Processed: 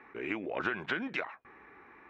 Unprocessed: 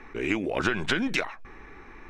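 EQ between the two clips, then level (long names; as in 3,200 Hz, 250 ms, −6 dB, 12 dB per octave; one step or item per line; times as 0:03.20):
band-pass filter 100–2,200 Hz
low-shelf EQ 360 Hz −9 dB
−4.0 dB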